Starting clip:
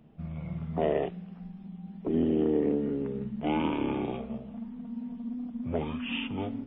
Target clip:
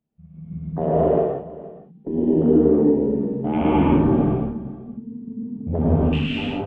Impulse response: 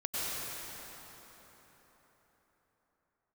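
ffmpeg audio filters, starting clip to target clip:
-filter_complex "[0:a]agate=range=-11dB:threshold=-34dB:ratio=16:detection=peak,afwtdn=0.0126,asettb=1/sr,asplit=3[a][b][c];[a]atrim=end=3.614[d];[b]atrim=start=3.61:end=6.26,asetpts=PTS-STARTPTS,afade=t=in:d=0.004:c=qsin,afade=t=out:st=2.646:d=0.004:c=qsin,bass=f=250:g=10,treble=f=4k:g=-3[e];[c]atrim=start=6.256[f];[d][e]acrossfade=d=0.004:c1=hsin:c2=qsin[g];[g][f]acrossfade=d=0.004:c1=qsin:c2=hsin,aecho=1:1:465:0.119[h];[1:a]atrim=start_sample=2205,afade=t=out:st=0.41:d=0.01,atrim=end_sample=18522[i];[h][i]afir=irnorm=-1:irlink=0,volume=5dB"

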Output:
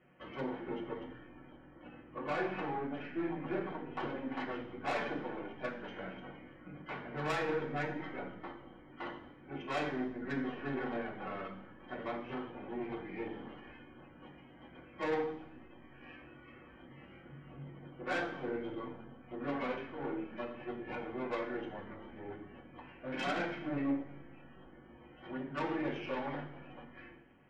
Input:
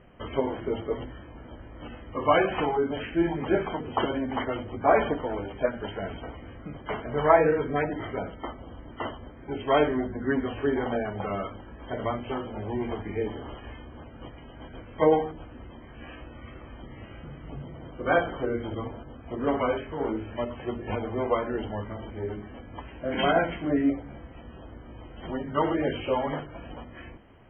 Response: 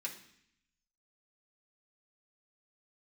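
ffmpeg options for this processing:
-filter_complex "[0:a]aeval=exprs='(tanh(15.8*val(0)+0.65)-tanh(0.65))/15.8':c=same,asettb=1/sr,asplit=3[a][b][c];[a]atrim=end=1.554[d];[b]atrim=start=1.55:end=4.24,asetpts=PTS-STARTPTS,afade=t=in:d=0.004:c=qsin,afade=t=out:st=2.686:d=0.004:c=qsin,lowpass=f=1.9k:p=1[e];[c]atrim=start=4.236[f];[d][e]acrossfade=d=0.004:c1=hsin:c2=qsin[g];[g][f]acrossfade=d=0.004:c1=qsin:c2=hsin[h];[1:a]atrim=start_sample=2205,asetrate=41895,aresample=44100[i];[h][i]afir=irnorm=-1:irlink=0,volume=-4dB"

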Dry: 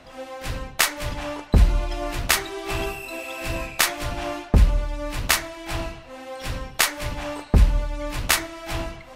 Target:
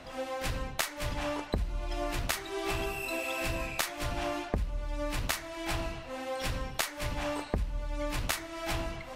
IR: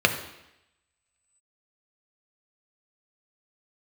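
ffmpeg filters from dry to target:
-af "acompressor=threshold=-29dB:ratio=8"

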